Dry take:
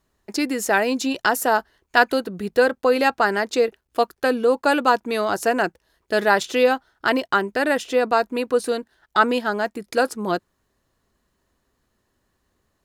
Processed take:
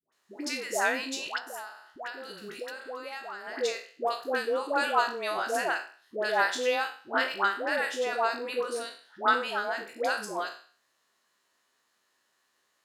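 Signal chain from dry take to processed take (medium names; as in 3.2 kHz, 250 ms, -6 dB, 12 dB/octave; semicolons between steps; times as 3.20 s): spectral sustain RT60 0.40 s; frequency weighting A; 1.26–3.47 s: compression 12:1, threshold -28 dBFS, peak gain reduction 19.5 dB; phase dispersion highs, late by 123 ms, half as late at 740 Hz; tape noise reduction on one side only encoder only; trim -8 dB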